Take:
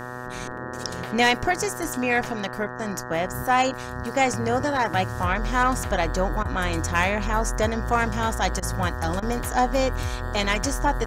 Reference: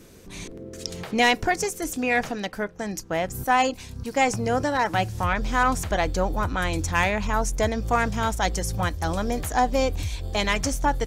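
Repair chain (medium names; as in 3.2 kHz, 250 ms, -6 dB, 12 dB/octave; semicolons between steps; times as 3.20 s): de-hum 124.1 Hz, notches 15; interpolate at 6.43/8.60/9.20 s, 22 ms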